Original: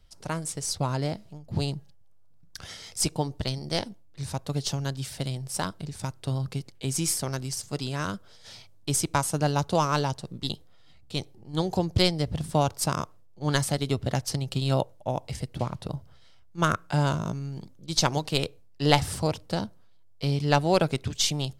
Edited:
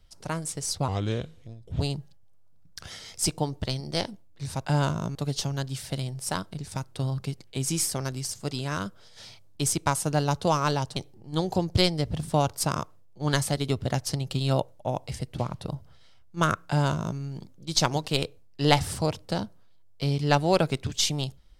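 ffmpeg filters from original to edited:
-filter_complex "[0:a]asplit=6[s0][s1][s2][s3][s4][s5];[s0]atrim=end=0.884[s6];[s1]atrim=start=0.88:end=1.58,asetpts=PTS-STARTPTS,asetrate=33516,aresample=44100,atrim=end_sample=40618,asetpts=PTS-STARTPTS[s7];[s2]atrim=start=1.576:end=4.432[s8];[s3]atrim=start=16.888:end=17.392[s9];[s4]atrim=start=4.428:end=10.242[s10];[s5]atrim=start=11.168[s11];[s6][s7]acrossfade=d=0.004:c1=hsin:c2=hsin[s12];[s12][s8]acrossfade=d=0.004:c1=hsin:c2=hsin[s13];[s13][s9]acrossfade=d=0.004:c1=hsin:c2=hsin[s14];[s14][s10]acrossfade=d=0.004:c1=hsin:c2=hsin[s15];[s15][s11]acrossfade=d=0.004:c1=hsin:c2=hsin"

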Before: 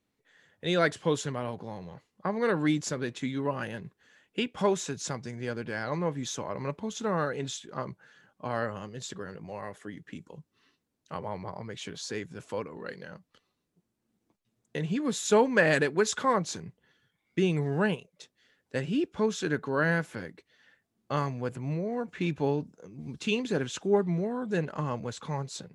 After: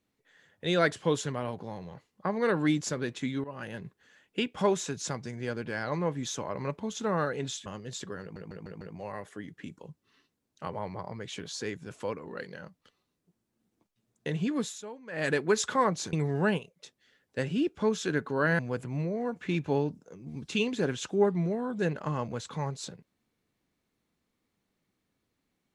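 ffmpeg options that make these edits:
-filter_complex "[0:a]asplit=11[s0][s1][s2][s3][s4][s5][s6][s7][s8][s9][s10];[s0]atrim=end=3.44,asetpts=PTS-STARTPTS,afade=t=out:st=3.436:d=0.004:c=hsin:silence=0.149624[s11];[s1]atrim=start=3.44:end=7.662,asetpts=PTS-STARTPTS,afade=t=in:d=0.38:silence=0.149624[s12];[s2]atrim=start=8.748:end=9.452[s13];[s3]atrim=start=9.298:end=9.452[s14];[s4]atrim=start=9.298:end=9.452[s15];[s5]atrim=start=9.298:end=9.452[s16];[s6]atrim=start=9.298:end=15.32,asetpts=PTS-STARTPTS,afade=t=out:st=5.752:d=0.27:silence=0.0891251[s17];[s7]atrim=start=15.32:end=15.6,asetpts=PTS-STARTPTS,volume=0.0891[s18];[s8]atrim=start=15.6:end=16.622,asetpts=PTS-STARTPTS,afade=t=in:d=0.27:silence=0.0891251[s19];[s9]atrim=start=17.498:end=19.962[s20];[s10]atrim=start=21.308[s21];[s11][s12]concat=n=2:v=0:a=1[s22];[s22][s13]acrossfade=d=0.004:c1=hsin:c2=hsin[s23];[s23][s14]acrossfade=d=0.004:c1=hsin:c2=hsin[s24];[s24][s15]acrossfade=d=0.004:c1=hsin:c2=hsin[s25];[s25][s16]acrossfade=d=0.004:c1=hsin:c2=hsin[s26];[s17][s18][s19]concat=n=3:v=0:a=1[s27];[s26][s27]acrossfade=d=0.004:c1=hsin:c2=hsin[s28];[s28][s20]acrossfade=d=0.004:c1=hsin:c2=hsin[s29];[s29][s21]acrossfade=d=0.004:c1=hsin:c2=hsin"

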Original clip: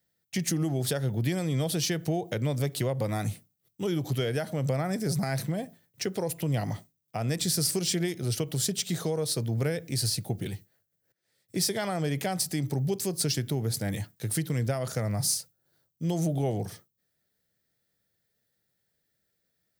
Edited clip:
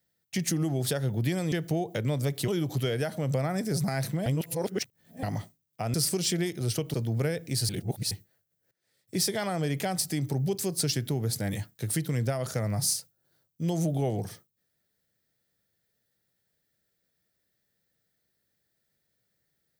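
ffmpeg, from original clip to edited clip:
-filter_complex "[0:a]asplit=9[s0][s1][s2][s3][s4][s5][s6][s7][s8];[s0]atrim=end=1.522[s9];[s1]atrim=start=1.888:end=2.852[s10];[s2]atrim=start=3.828:end=5.612[s11];[s3]atrim=start=5.608:end=6.582,asetpts=PTS-STARTPTS,areverse[s12];[s4]atrim=start=6.578:end=7.292[s13];[s5]atrim=start=7.558:end=8.562[s14];[s6]atrim=start=9.348:end=10.102[s15];[s7]atrim=start=10.098:end=10.522,asetpts=PTS-STARTPTS,areverse[s16];[s8]atrim=start=10.518[s17];[s9][s10]acrossfade=d=0.004:c1=hsin:c2=hsin[s18];[s18][s11]acrossfade=d=0.004:c1=hsin:c2=hsin[s19];[s19][s12]acrossfade=d=0.004:c1=hsin:c2=hsin[s20];[s20][s13]acrossfade=d=0.004:c1=hsin:c2=hsin[s21];[s21][s14]acrossfade=d=0.004:c1=hsin:c2=hsin[s22];[s22][s15]acrossfade=d=0.004:c1=hsin:c2=hsin[s23];[s23][s16]acrossfade=d=0.004:c1=hsin:c2=hsin[s24];[s24][s17]acrossfade=d=0.004:c1=hsin:c2=hsin"

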